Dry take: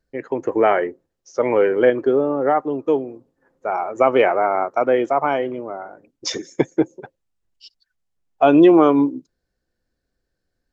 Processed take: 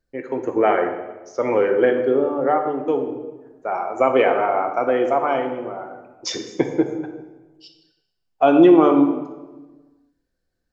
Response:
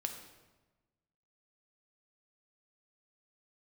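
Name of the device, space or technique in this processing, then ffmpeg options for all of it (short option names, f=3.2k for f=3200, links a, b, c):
bathroom: -filter_complex "[1:a]atrim=start_sample=2205[a];[0:a][a]afir=irnorm=-1:irlink=0,volume=-1dB"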